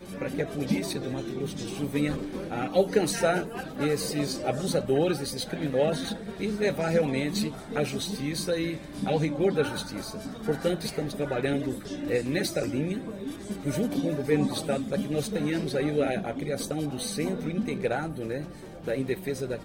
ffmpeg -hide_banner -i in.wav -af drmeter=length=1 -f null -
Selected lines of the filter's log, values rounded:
Channel 1: DR: 12.1
Overall DR: 12.1